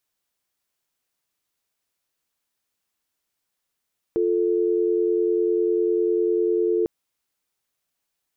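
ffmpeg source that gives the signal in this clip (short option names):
-f lavfi -i "aevalsrc='0.0891*(sin(2*PI*350*t)+sin(2*PI*440*t))':d=2.7:s=44100"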